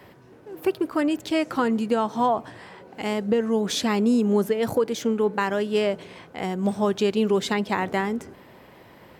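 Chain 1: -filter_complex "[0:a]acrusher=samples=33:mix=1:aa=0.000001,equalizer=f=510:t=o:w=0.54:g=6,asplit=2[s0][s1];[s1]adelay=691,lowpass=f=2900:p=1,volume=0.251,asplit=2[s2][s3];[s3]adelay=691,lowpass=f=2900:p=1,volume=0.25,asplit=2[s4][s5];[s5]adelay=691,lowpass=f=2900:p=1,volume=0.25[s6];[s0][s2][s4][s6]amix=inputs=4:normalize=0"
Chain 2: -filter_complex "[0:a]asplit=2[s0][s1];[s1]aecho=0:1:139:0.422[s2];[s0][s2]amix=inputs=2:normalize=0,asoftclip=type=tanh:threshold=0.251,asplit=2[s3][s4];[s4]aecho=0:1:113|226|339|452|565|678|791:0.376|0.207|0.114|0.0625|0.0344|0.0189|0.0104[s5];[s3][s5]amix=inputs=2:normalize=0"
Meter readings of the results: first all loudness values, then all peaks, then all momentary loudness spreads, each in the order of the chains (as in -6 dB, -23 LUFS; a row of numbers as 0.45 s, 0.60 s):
-22.0 LUFS, -24.0 LUFS; -8.5 dBFS, -12.0 dBFS; 14 LU, 10 LU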